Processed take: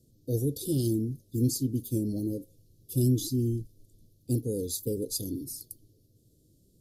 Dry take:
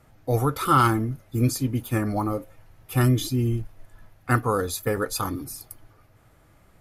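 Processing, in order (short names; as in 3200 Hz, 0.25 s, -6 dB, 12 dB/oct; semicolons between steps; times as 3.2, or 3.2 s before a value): inverse Chebyshev band-stop 910–2000 Hz, stop band 60 dB; low shelf 75 Hz -11.5 dB; gain -2 dB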